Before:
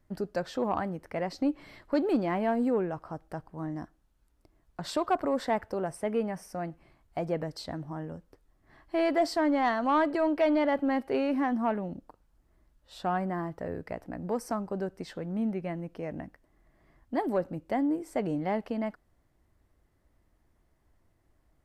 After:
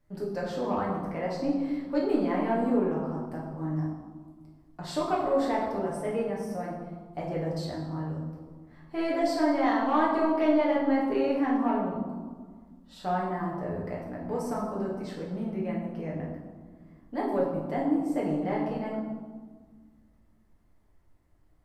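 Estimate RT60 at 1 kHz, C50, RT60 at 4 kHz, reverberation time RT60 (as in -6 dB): 1.6 s, 2.5 dB, 0.90 s, 1.6 s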